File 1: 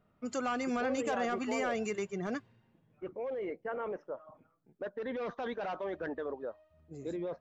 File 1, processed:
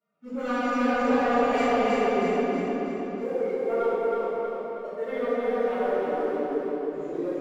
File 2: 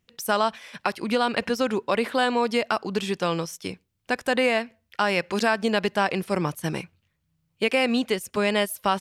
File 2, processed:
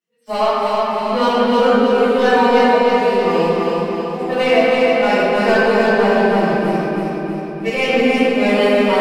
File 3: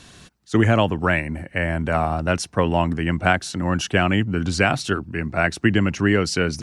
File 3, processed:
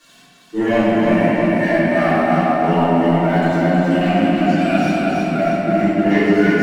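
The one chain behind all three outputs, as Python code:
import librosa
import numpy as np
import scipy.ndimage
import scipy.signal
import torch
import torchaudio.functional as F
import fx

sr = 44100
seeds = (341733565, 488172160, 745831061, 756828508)

y = fx.hpss_only(x, sr, part='harmonic')
y = scipy.signal.sosfilt(scipy.signal.bessel(6, 300.0, 'highpass', norm='mag', fs=sr, output='sos'), y)
y = fx.leveller(y, sr, passes=2)
y = fx.echo_feedback(y, sr, ms=319, feedback_pct=53, wet_db=-3.0)
y = fx.room_shoebox(y, sr, seeds[0], volume_m3=120.0, walls='hard', distance_m=2.5)
y = y * librosa.db_to_amplitude(-11.5)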